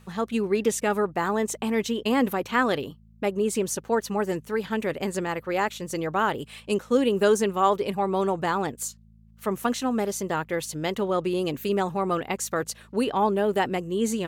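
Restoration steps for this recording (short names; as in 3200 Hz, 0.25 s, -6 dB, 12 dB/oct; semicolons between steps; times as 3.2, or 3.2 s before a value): de-hum 54.7 Hz, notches 4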